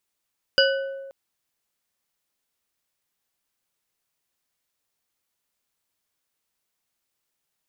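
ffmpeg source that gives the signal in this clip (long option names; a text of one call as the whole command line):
ffmpeg -f lavfi -i "aevalsrc='0.141*pow(10,-3*t/1.49)*sin(2*PI*544*t)+0.141*pow(10,-3*t/0.733)*sin(2*PI*1499.8*t)+0.141*pow(10,-3*t/0.457)*sin(2*PI*2939.8*t)+0.141*pow(10,-3*t/0.322)*sin(2*PI*4859.6*t)':duration=0.53:sample_rate=44100" out.wav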